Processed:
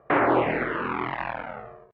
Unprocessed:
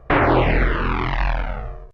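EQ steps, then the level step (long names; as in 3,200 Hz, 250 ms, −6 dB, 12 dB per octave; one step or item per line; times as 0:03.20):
band-pass filter 220–2,200 Hz
−3.5 dB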